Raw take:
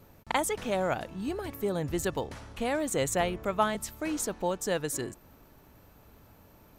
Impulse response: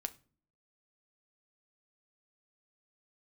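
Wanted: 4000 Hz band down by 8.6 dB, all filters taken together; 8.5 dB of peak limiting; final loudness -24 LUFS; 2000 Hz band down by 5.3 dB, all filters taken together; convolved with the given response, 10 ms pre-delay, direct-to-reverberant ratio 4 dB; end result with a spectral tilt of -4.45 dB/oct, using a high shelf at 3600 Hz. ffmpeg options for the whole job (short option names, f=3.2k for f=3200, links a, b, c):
-filter_complex "[0:a]equalizer=f=2k:t=o:g=-4,highshelf=f=3.6k:g=-4.5,equalizer=f=4k:t=o:g=-7.5,alimiter=limit=-22.5dB:level=0:latency=1,asplit=2[a][b];[1:a]atrim=start_sample=2205,adelay=10[c];[b][c]afir=irnorm=-1:irlink=0,volume=-2.5dB[d];[a][d]amix=inputs=2:normalize=0,volume=9dB"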